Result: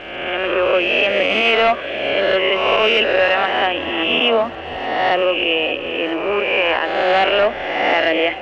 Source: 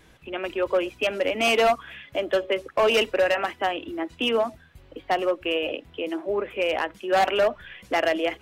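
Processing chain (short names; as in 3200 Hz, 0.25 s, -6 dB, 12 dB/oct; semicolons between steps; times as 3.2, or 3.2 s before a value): spectral swells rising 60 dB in 1.39 s; crackle 440/s -37 dBFS; synth low-pass 2900 Hz, resonance Q 1.8; limiter -10.5 dBFS, peak gain reduction 6 dB; tape echo 0.572 s, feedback 74%, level -14 dB, low-pass 2300 Hz; gain +4 dB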